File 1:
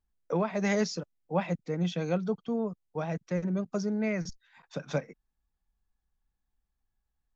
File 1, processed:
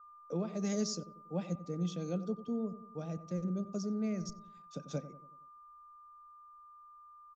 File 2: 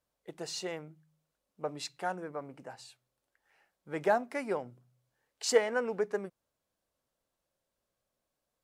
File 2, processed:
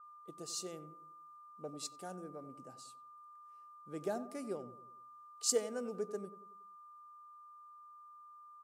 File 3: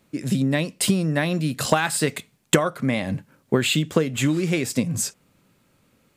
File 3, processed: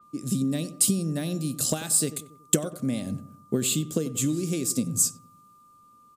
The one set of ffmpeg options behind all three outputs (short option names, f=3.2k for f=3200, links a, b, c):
-filter_complex "[0:a]equalizer=f=250:t=o:w=1:g=4,equalizer=f=1k:t=o:w=1:g=-11,equalizer=f=2k:t=o:w=1:g=-10,equalizer=f=8k:t=o:w=1:g=4,aeval=exprs='val(0)+0.00501*sin(2*PI*1200*n/s)':c=same,asplit=2[a][b];[b]adelay=93,lowpass=f=1.2k:p=1,volume=-13dB,asplit=2[c][d];[d]adelay=93,lowpass=f=1.2k:p=1,volume=0.51,asplit=2[e][f];[f]adelay=93,lowpass=f=1.2k:p=1,volume=0.51,asplit=2[g][h];[h]adelay=93,lowpass=f=1.2k:p=1,volume=0.51,asplit=2[i][j];[j]adelay=93,lowpass=f=1.2k:p=1,volume=0.51[k];[a][c][e][g][i][k]amix=inputs=6:normalize=0,crystalizer=i=0.5:c=0,adynamicequalizer=threshold=0.00891:dfrequency=4800:dqfactor=0.7:tfrequency=4800:tqfactor=0.7:attack=5:release=100:ratio=0.375:range=3:mode=boostabove:tftype=highshelf,volume=-7dB"